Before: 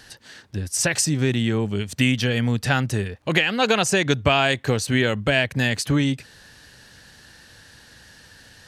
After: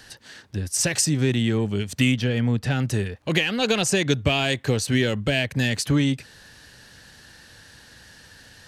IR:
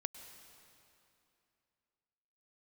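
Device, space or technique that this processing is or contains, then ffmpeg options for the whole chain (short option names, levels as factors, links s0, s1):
one-band saturation: -filter_complex "[0:a]acrossover=split=570|2100[s0][s1][s2];[s1]asoftclip=type=tanh:threshold=0.0224[s3];[s0][s3][s2]amix=inputs=3:normalize=0,asettb=1/sr,asplit=3[s4][s5][s6];[s4]atrim=end=2.144[s7];[s5]atrim=start=2.14:end=2.8,asetpts=PTS-STARTPTS,afade=t=in:d=0.004:c=qsin,afade=t=out:st=0.656:d=0.004:c=qsin,highshelf=f=3200:g=-10[s8];[s6]atrim=start=2.796[s9];[s7][s8]acrossfade=d=0.004:c1=hsin:c2=qsin[s10];[s10][s9]acrossfade=d=0.004:c1=qsin:c2=hsin"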